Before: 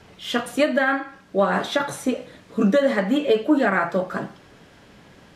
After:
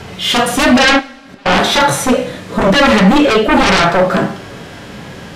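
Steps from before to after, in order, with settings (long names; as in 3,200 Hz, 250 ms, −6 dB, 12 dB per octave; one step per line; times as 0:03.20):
sine wavefolder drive 13 dB, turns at −8.5 dBFS
0:00.99–0:01.46: gate with flip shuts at −21 dBFS, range −36 dB
harmonic and percussive parts rebalanced harmonic +9 dB
coupled-rooms reverb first 0.34 s, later 1.8 s, from −18 dB, DRR 11.5 dB
level −4.5 dB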